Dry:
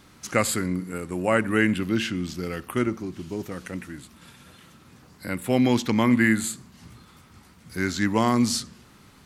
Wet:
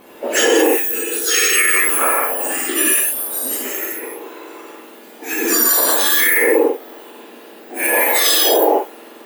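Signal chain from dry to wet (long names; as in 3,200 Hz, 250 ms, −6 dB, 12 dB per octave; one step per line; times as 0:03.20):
frequency axis turned over on the octave scale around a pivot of 1,900 Hz
0:02.42–0:03.79: parametric band 12,000 Hz +8 dB 0.29 octaves
reverb whose tail is shaped and stops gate 240 ms flat, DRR −6 dB
brickwall limiter −12.5 dBFS, peak gain reduction 6.5 dB
level +8.5 dB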